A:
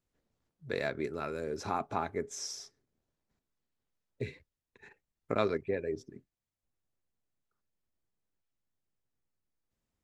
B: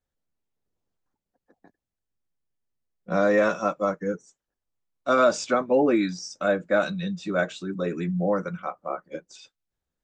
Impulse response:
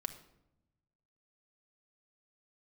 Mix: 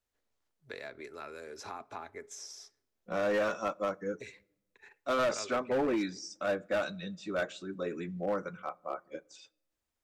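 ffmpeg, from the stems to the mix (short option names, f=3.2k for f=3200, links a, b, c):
-filter_complex "[0:a]lowshelf=f=430:g=-12,acrossover=split=370|890[a][b][c];[a]acompressor=threshold=-50dB:ratio=4[d];[b]acompressor=threshold=-48dB:ratio=4[e];[c]acompressor=threshold=-45dB:ratio=4[f];[d][e][f]amix=inputs=3:normalize=0,volume=-1dB,asplit=2[g][h];[h]volume=-13dB[i];[1:a]volume=-8dB,asplit=2[j][k];[k]volume=-14dB[l];[2:a]atrim=start_sample=2205[m];[i][l]amix=inputs=2:normalize=0[n];[n][m]afir=irnorm=-1:irlink=0[o];[g][j][o]amix=inputs=3:normalize=0,equalizer=f=170:t=o:w=0.62:g=-7.5,asoftclip=type=hard:threshold=-25.5dB"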